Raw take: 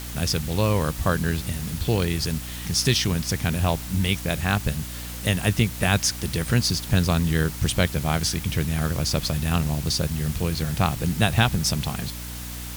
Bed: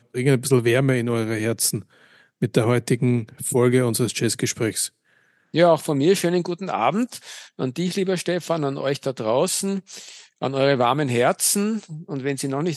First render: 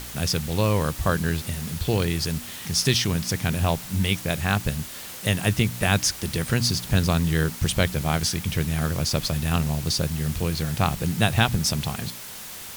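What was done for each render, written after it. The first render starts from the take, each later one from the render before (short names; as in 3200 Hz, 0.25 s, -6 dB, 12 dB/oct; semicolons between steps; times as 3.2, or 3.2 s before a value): de-hum 60 Hz, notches 5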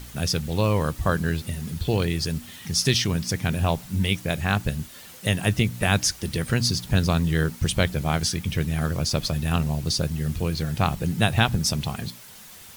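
denoiser 8 dB, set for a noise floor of -38 dBFS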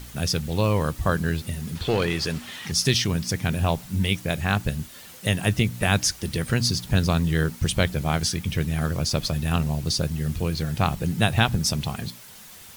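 1.75–2.72 overdrive pedal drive 15 dB, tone 2600 Hz, clips at -11.5 dBFS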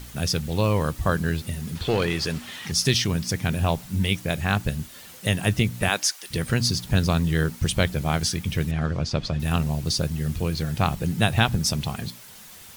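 5.88–6.3 HPF 310 Hz -> 1200 Hz; 8.71–9.4 air absorption 130 m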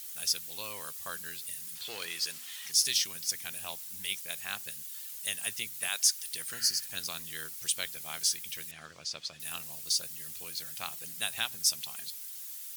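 6.56–6.85 spectral repair 1300–4100 Hz both; differentiator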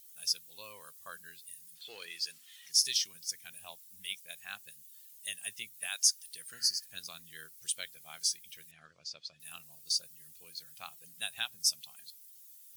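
reverse; upward compressor, threshold -42 dBFS; reverse; spectral expander 1.5:1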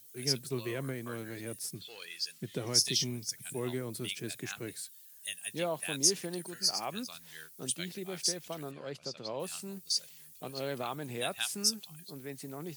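add bed -18.5 dB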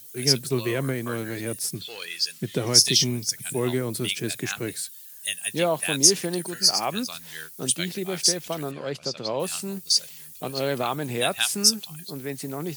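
gain +10.5 dB; limiter -2 dBFS, peak gain reduction 1.5 dB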